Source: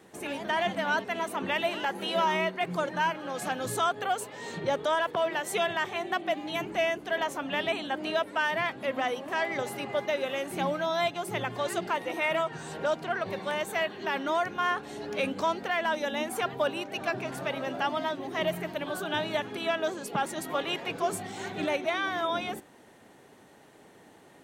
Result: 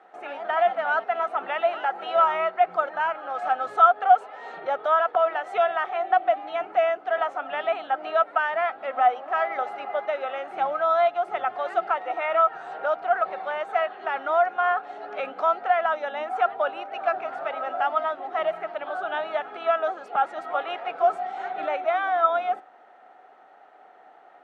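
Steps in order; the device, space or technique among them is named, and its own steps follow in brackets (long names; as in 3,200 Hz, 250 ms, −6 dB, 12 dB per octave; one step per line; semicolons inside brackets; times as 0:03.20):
tin-can telephone (band-pass filter 550–2,200 Hz; hollow resonant body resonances 740/1,300 Hz, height 16 dB, ringing for 35 ms)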